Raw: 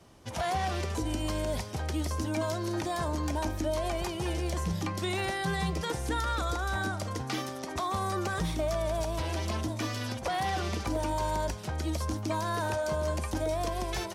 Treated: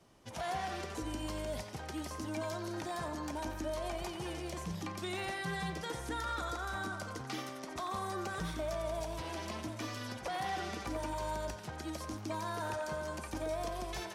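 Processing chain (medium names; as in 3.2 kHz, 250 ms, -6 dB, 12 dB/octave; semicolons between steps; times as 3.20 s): peaking EQ 80 Hz -8.5 dB 0.58 oct; band-passed feedback delay 89 ms, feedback 65%, band-pass 1.5 kHz, level -5 dB; trim -7 dB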